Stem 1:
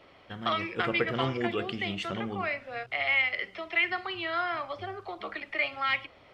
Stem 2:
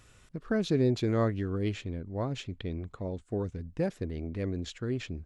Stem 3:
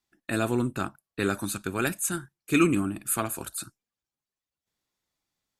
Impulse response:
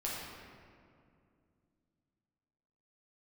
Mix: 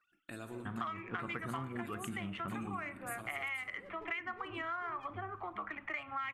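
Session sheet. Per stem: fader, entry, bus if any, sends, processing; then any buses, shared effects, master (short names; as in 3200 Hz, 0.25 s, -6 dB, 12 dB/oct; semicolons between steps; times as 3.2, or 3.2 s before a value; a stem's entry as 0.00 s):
+1.0 dB, 0.35 s, no bus, no send, Wiener smoothing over 9 samples; expander -48 dBFS; EQ curve 260 Hz 0 dB, 490 Hz -12 dB, 1100 Hz +4 dB, 12000 Hz -22 dB
-12.5 dB, 0.00 s, bus A, send -16.5 dB, sine-wave speech; negative-ratio compressor -31 dBFS; one-sided clip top -36 dBFS; auto duck -8 dB, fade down 0.25 s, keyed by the third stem
-12.0 dB, 0.00 s, bus A, send -18.5 dB, dry
bus A: 0.0 dB, compressor 2.5:1, threshold -49 dBFS, peak gain reduction 13.5 dB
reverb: on, RT60 2.4 s, pre-delay 6 ms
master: compressor, threshold -37 dBFS, peak gain reduction 13 dB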